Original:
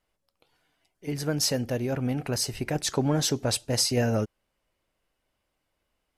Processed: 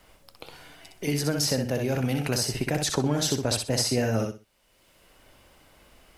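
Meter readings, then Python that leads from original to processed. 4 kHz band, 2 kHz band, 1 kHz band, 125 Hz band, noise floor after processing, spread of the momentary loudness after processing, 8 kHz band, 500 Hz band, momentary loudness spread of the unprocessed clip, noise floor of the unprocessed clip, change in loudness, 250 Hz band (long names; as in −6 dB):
+0.5 dB, +3.0 dB, +1.0 dB, +1.0 dB, −63 dBFS, 7 LU, +0.5 dB, +1.0 dB, 7 LU, −80 dBFS, +0.5 dB, +1.0 dB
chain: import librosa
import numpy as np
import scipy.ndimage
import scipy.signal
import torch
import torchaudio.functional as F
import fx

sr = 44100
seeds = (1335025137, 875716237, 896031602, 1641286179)

p1 = x + fx.echo_feedback(x, sr, ms=62, feedback_pct=20, wet_db=-5.0, dry=0)
y = fx.band_squash(p1, sr, depth_pct=70)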